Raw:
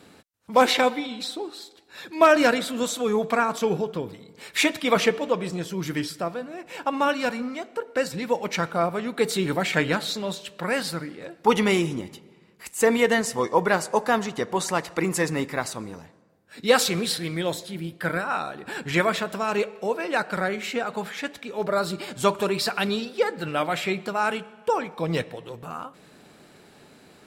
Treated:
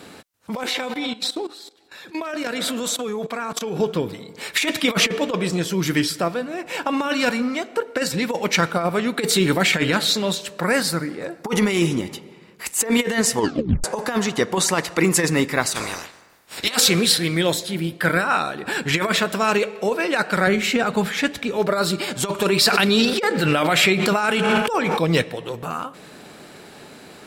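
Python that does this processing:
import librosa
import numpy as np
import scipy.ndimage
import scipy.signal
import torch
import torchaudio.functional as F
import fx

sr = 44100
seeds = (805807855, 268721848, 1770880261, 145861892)

y = fx.level_steps(x, sr, step_db=17, at=(0.57, 3.8))
y = fx.peak_eq(y, sr, hz=3100.0, db=-8.0, octaves=0.77, at=(10.41, 11.7))
y = fx.spec_clip(y, sr, under_db=25, at=(15.74, 16.75), fade=0.02)
y = fx.low_shelf(y, sr, hz=190.0, db=12.0, at=(20.47, 21.57))
y = fx.pre_swell(y, sr, db_per_s=28.0, at=(22.54, 24.97), fade=0.02)
y = fx.edit(y, sr, fx.tape_stop(start_s=13.37, length_s=0.47), tone=tone)
y = fx.low_shelf(y, sr, hz=220.0, db=-4.5)
y = fx.over_compress(y, sr, threshold_db=-24.0, ratio=-0.5)
y = fx.dynamic_eq(y, sr, hz=780.0, q=0.8, threshold_db=-37.0, ratio=4.0, max_db=-5)
y = y * librosa.db_to_amplitude(8.5)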